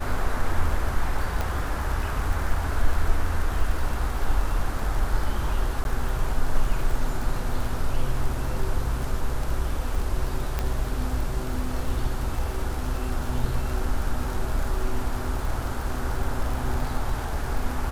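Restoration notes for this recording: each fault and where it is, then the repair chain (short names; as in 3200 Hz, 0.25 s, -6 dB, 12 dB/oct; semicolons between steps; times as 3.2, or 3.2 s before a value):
crackle 45/s -29 dBFS
1.41 pop
5.84–5.85 gap 11 ms
10.59 pop -12 dBFS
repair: de-click; interpolate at 5.84, 11 ms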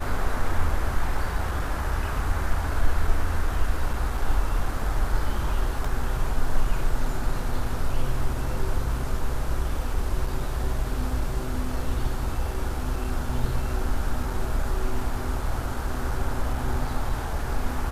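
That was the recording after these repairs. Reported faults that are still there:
1.41 pop
10.59 pop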